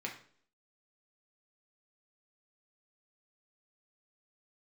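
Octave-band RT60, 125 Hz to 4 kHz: 0.55, 0.60, 0.60, 0.50, 0.45, 0.50 s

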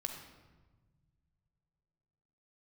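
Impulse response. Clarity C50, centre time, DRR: 5.0 dB, 33 ms, 3.5 dB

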